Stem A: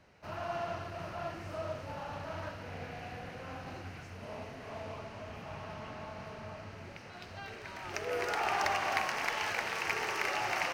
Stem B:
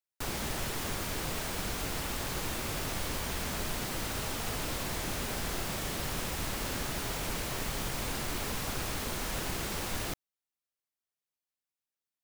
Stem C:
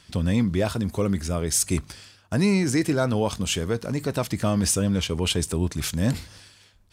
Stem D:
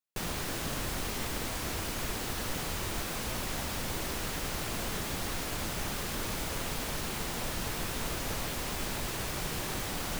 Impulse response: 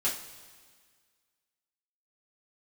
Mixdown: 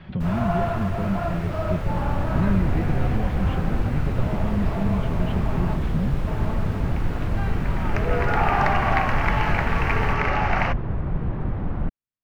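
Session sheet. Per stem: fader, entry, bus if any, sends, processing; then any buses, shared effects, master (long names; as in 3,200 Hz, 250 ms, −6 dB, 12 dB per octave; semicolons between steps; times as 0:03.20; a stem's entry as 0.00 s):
+2.0 dB, 0.00 s, muted 0:05.76–0:06.27, send −14.5 dB, parametric band 980 Hz +7.5 dB 2.9 octaves
−3.5 dB, 0.00 s, no send, no processing
−13.5 dB, 0.00 s, no send, Butterworth low-pass 4,100 Hz; comb filter 5.4 ms; multiband upward and downward compressor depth 70%
+2.5 dB, 1.70 s, no send, low-pass filter 1,200 Hz 12 dB per octave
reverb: on, pre-delay 3 ms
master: bass and treble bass +13 dB, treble −15 dB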